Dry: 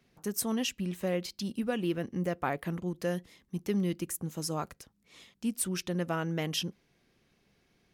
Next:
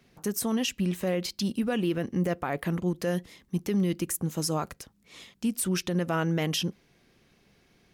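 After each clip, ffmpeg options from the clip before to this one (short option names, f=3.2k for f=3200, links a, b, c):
-af "alimiter=level_in=1.5dB:limit=-24dB:level=0:latency=1:release=56,volume=-1.5dB,volume=6.5dB"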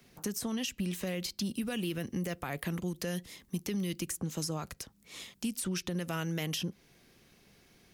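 -filter_complex "[0:a]highshelf=f=6.4k:g=9.5,acrossover=split=170|2100|6800[a][b][c][d];[a]acompressor=threshold=-39dB:ratio=4[e];[b]acompressor=threshold=-37dB:ratio=4[f];[c]acompressor=threshold=-39dB:ratio=4[g];[d]acompressor=threshold=-47dB:ratio=4[h];[e][f][g][h]amix=inputs=4:normalize=0"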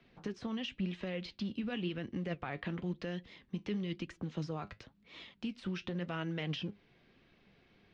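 -af "flanger=delay=3:depth=6.9:regen=66:speed=0.96:shape=sinusoidal,acrusher=bits=7:mode=log:mix=0:aa=0.000001,lowpass=f=3.7k:w=0.5412,lowpass=f=3.7k:w=1.3066,volume=1.5dB"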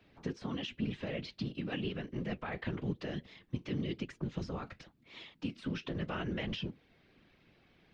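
-af "afftfilt=real='hypot(re,im)*cos(2*PI*random(0))':imag='hypot(re,im)*sin(2*PI*random(1))':win_size=512:overlap=0.75,volume=6.5dB"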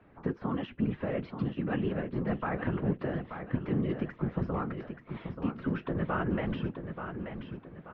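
-filter_complex "[0:a]lowpass=f=1.3k:t=q:w=1.5,asplit=2[a][b];[b]aecho=0:1:882|1764|2646|3528:0.398|0.155|0.0606|0.0236[c];[a][c]amix=inputs=2:normalize=0,volume=5.5dB"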